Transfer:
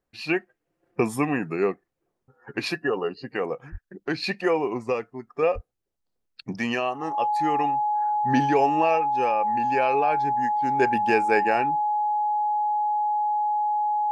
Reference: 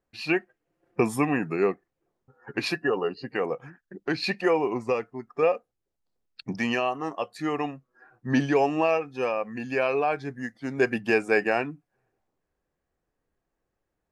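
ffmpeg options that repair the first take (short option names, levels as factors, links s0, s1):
-filter_complex "[0:a]bandreject=f=840:w=30,asplit=3[s0][s1][s2];[s0]afade=t=out:st=3.71:d=0.02[s3];[s1]highpass=f=140:w=0.5412,highpass=f=140:w=1.3066,afade=t=in:st=3.71:d=0.02,afade=t=out:st=3.83:d=0.02[s4];[s2]afade=t=in:st=3.83:d=0.02[s5];[s3][s4][s5]amix=inputs=3:normalize=0,asplit=3[s6][s7][s8];[s6]afade=t=out:st=5.54:d=0.02[s9];[s7]highpass=f=140:w=0.5412,highpass=f=140:w=1.3066,afade=t=in:st=5.54:d=0.02,afade=t=out:st=5.66:d=0.02[s10];[s8]afade=t=in:st=5.66:d=0.02[s11];[s9][s10][s11]amix=inputs=3:normalize=0"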